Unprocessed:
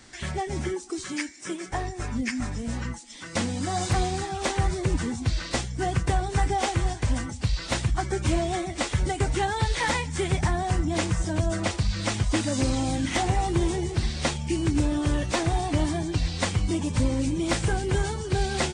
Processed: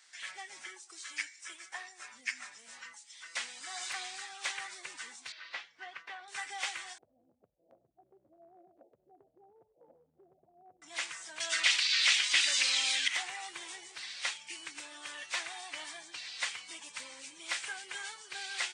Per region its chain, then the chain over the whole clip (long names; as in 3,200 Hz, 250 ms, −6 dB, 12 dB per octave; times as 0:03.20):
0:05.32–0:06.28: high-pass filter 250 Hz 6 dB per octave + high-frequency loss of the air 270 metres
0:06.98–0:10.82: Butterworth low-pass 700 Hz 72 dB per octave + low-shelf EQ 360 Hz +9 dB + downward compressor 4 to 1, threshold −27 dBFS
0:11.40–0:13.08: meter weighting curve D + envelope flattener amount 50%
whole clip: high-pass filter 1,400 Hz 12 dB per octave; dynamic equaliser 2,300 Hz, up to +6 dB, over −44 dBFS, Q 0.85; level −8 dB